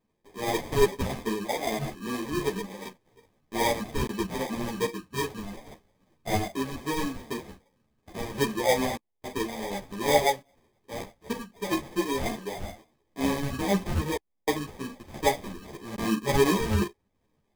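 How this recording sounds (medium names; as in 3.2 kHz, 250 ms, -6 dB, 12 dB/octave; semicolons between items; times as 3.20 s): phasing stages 4, 2.5 Hz, lowest notch 430–1400 Hz; aliases and images of a low sample rate 1.4 kHz, jitter 0%; random-step tremolo 3.5 Hz; a shimmering, thickened sound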